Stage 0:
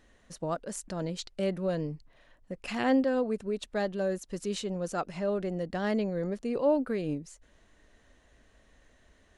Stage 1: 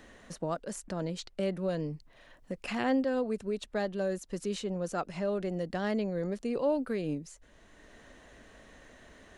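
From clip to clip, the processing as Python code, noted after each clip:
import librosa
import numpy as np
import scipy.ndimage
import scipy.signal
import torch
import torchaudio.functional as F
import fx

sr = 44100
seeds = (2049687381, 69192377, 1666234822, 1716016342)

y = fx.band_squash(x, sr, depth_pct=40)
y = y * 10.0 ** (-1.5 / 20.0)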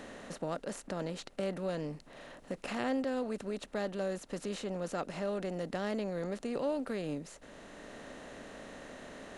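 y = fx.bin_compress(x, sr, power=0.6)
y = y * 10.0 ** (-6.5 / 20.0)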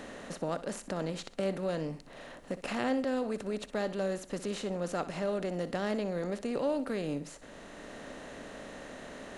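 y = fx.echo_feedback(x, sr, ms=62, feedback_pct=33, wet_db=-14.5)
y = y * 10.0 ** (2.5 / 20.0)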